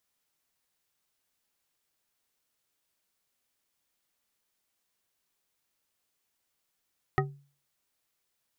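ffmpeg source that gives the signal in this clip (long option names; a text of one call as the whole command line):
ffmpeg -f lavfi -i "aevalsrc='0.0668*pow(10,-3*t/0.41)*sin(2*PI*141*t)+0.0668*pow(10,-3*t/0.202)*sin(2*PI*388.7*t)+0.0668*pow(10,-3*t/0.126)*sin(2*PI*762*t)+0.0668*pow(10,-3*t/0.089)*sin(2*PI*1259.6*t)+0.0668*pow(10,-3*t/0.067)*sin(2*PI*1880.9*t)':duration=0.89:sample_rate=44100" out.wav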